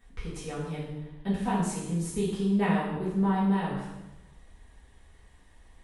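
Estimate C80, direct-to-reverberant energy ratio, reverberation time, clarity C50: 4.0 dB, -9.5 dB, 1.0 s, 1.5 dB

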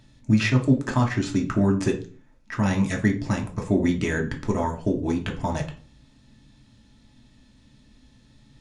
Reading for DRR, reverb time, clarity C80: 1.5 dB, 0.40 s, 17.5 dB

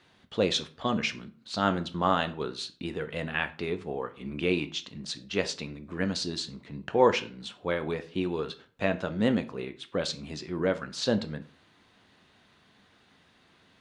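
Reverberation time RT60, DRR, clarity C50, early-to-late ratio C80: 0.40 s, 9.5 dB, 16.0 dB, 21.0 dB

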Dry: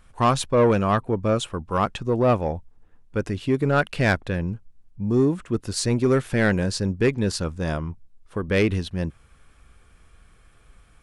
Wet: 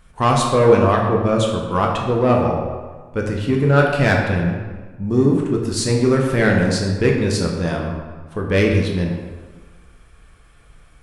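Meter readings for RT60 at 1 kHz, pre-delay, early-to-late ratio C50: 1.5 s, 8 ms, 3.0 dB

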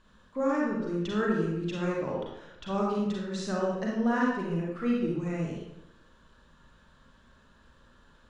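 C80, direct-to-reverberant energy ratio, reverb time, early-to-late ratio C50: 3.0 dB, -3.5 dB, 0.90 s, -0.5 dB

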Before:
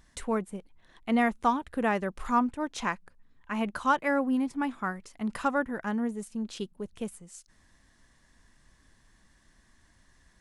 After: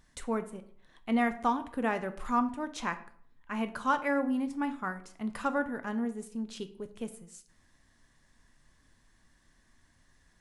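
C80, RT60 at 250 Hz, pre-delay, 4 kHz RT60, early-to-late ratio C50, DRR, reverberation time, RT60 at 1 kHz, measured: 17.5 dB, 0.70 s, 6 ms, 0.40 s, 14.5 dB, 9.0 dB, 0.60 s, 0.60 s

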